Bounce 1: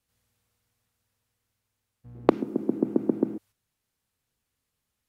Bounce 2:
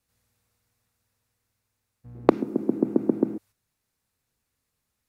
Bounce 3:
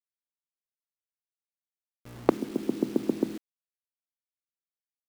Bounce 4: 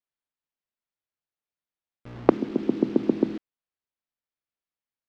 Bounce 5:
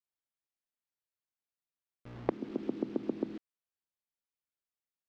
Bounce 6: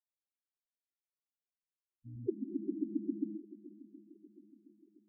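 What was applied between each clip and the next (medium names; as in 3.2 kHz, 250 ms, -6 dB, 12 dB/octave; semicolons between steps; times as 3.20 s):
peaking EQ 3.1 kHz -5.5 dB 0.24 oct; trim +2 dB
bit crusher 7-bit; trim -4.5 dB
distance through air 200 m; trim +5 dB
compression 2:1, threshold -26 dBFS, peak gain reduction 9.5 dB; trim -6.5 dB
shuffle delay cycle 719 ms, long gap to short 1.5:1, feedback 48%, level -17 dB; loudest bins only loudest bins 4; trim +2.5 dB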